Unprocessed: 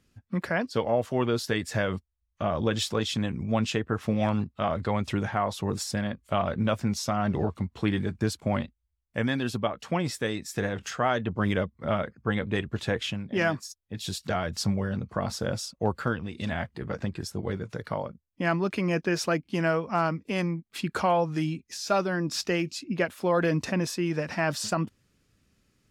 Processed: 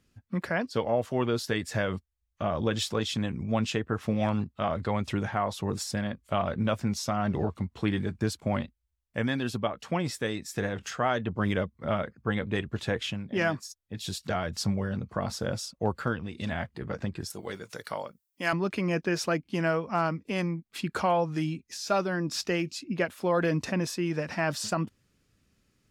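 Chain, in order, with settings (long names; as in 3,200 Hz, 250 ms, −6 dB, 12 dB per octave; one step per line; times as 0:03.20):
0:17.30–0:18.53: RIAA equalisation recording
level −1.5 dB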